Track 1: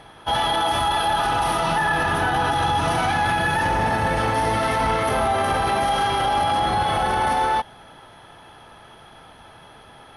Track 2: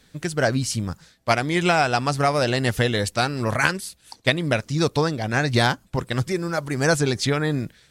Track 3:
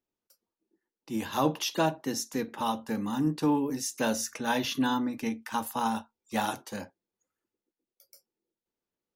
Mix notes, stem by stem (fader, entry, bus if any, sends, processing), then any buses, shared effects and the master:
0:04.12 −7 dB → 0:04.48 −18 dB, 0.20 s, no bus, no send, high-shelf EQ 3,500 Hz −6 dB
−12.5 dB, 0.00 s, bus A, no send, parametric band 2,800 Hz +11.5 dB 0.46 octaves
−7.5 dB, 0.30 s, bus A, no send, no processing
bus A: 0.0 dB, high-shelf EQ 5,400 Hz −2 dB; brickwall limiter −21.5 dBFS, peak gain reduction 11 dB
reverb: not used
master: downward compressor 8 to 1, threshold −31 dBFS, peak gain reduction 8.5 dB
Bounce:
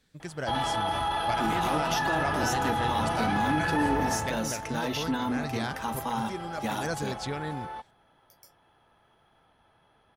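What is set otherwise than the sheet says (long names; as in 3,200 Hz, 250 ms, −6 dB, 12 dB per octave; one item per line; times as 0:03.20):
stem 2: missing parametric band 2,800 Hz +11.5 dB 0.46 octaves
stem 3 −7.5 dB → +1.5 dB
master: missing downward compressor 8 to 1, threshold −31 dBFS, peak gain reduction 8.5 dB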